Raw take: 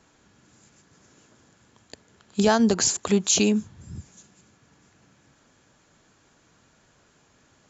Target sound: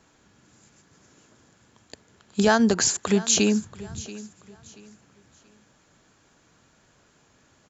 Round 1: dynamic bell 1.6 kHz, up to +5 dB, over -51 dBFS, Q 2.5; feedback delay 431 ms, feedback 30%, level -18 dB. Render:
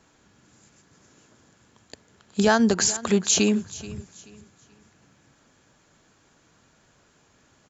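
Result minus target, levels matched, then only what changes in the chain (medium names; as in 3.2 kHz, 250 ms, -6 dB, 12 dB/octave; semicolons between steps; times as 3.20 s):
echo 251 ms early
change: feedback delay 682 ms, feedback 30%, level -18 dB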